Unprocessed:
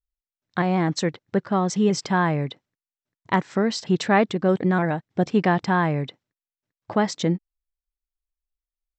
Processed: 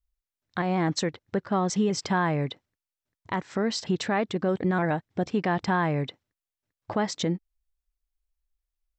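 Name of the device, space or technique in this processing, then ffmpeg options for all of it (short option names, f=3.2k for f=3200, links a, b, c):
car stereo with a boomy subwoofer: -af "lowshelf=f=100:t=q:w=1.5:g=7.5,alimiter=limit=-16dB:level=0:latency=1:release=234"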